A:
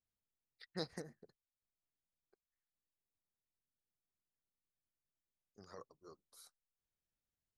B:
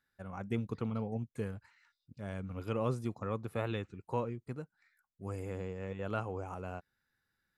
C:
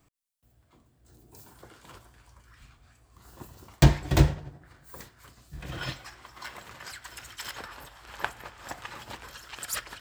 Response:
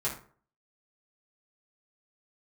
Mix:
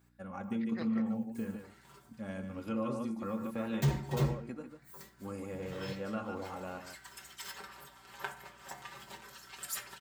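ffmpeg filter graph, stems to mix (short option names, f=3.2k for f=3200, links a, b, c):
-filter_complex "[0:a]lowpass=f=2.4k:t=q:w=4.9,volume=-2dB[a];[1:a]equalizer=f=220:w=5.2:g=10,aecho=1:1:3.6:0.7,volume=-2.5dB,asplit=4[b][c][d][e];[c]volume=-12.5dB[f];[d]volume=-8.5dB[g];[2:a]highshelf=f=6.4k:g=5.5,aecho=1:1:5.2:0.83,volume=-13dB,asplit=2[h][i];[i]volume=-7dB[j];[e]apad=whole_len=441379[k];[h][k]sidechaincompress=threshold=-43dB:ratio=8:attack=16:release=872[l];[b][l]amix=inputs=2:normalize=0,aeval=exprs='val(0)+0.000794*(sin(2*PI*60*n/s)+sin(2*PI*2*60*n/s)/2+sin(2*PI*3*60*n/s)/3+sin(2*PI*4*60*n/s)/4+sin(2*PI*5*60*n/s)/5)':c=same,acompressor=threshold=-36dB:ratio=6,volume=0dB[m];[3:a]atrim=start_sample=2205[n];[f][j]amix=inputs=2:normalize=0[o];[o][n]afir=irnorm=-1:irlink=0[p];[g]aecho=0:1:147:1[q];[a][m][p][q]amix=inputs=4:normalize=0,highpass=f=140:p=1,asoftclip=type=hard:threshold=-22.5dB"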